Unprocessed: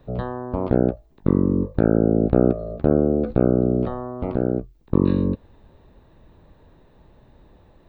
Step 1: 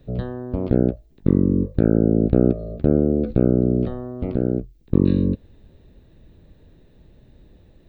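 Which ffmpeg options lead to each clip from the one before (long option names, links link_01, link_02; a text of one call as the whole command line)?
ffmpeg -i in.wav -af "equalizer=frequency=990:width=1.1:gain=-14.5,volume=2.5dB" out.wav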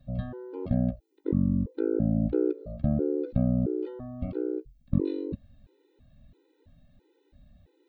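ffmpeg -i in.wav -af "afftfilt=real='re*gt(sin(2*PI*1.5*pts/sr)*(1-2*mod(floor(b*sr/1024/260),2)),0)':imag='im*gt(sin(2*PI*1.5*pts/sr)*(1-2*mod(floor(b*sr/1024/260),2)),0)':win_size=1024:overlap=0.75,volume=-5.5dB" out.wav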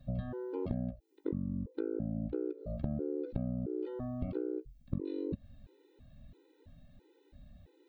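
ffmpeg -i in.wav -af "acompressor=threshold=-33dB:ratio=8,volume=1dB" out.wav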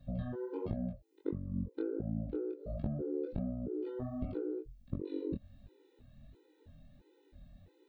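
ffmpeg -i in.wav -af "flanger=delay=19:depth=5.8:speed=1.4,volume=2dB" out.wav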